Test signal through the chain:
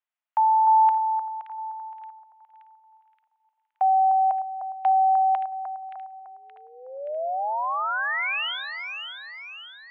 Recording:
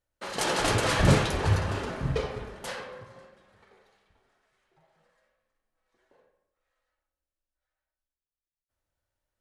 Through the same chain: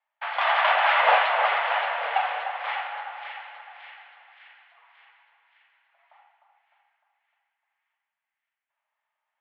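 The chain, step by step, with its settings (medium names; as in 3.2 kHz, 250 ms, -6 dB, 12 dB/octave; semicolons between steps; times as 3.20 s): on a send: two-band feedback delay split 1.3 kHz, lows 303 ms, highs 574 ms, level -7 dB; on the sum: mistuned SSB +320 Hz 290–2800 Hz; trim +6.5 dB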